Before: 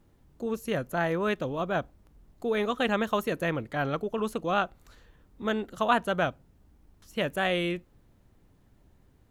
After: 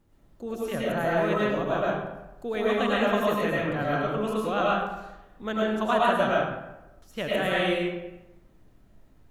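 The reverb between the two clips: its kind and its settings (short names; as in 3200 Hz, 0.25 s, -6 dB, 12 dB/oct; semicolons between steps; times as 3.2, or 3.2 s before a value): digital reverb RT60 1 s, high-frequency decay 0.6×, pre-delay 65 ms, DRR -5.5 dB; gain -3.5 dB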